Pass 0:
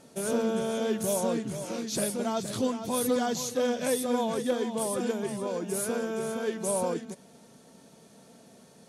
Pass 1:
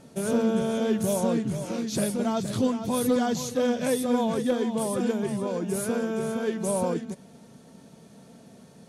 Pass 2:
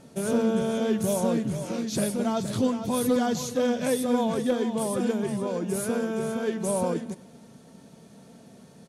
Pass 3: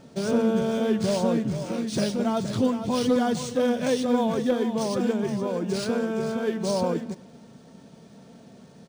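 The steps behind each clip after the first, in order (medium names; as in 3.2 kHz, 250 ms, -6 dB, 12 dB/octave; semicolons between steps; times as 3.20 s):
tone controls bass +7 dB, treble -3 dB; trim +1.5 dB
feedback delay 100 ms, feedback 55%, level -22 dB
decimation joined by straight lines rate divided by 3×; trim +1.5 dB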